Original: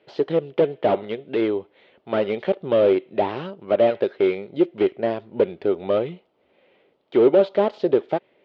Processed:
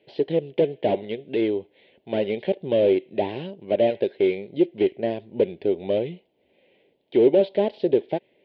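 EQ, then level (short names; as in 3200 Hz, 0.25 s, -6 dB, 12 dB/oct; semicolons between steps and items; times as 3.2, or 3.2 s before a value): fixed phaser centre 3000 Hz, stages 4; 0.0 dB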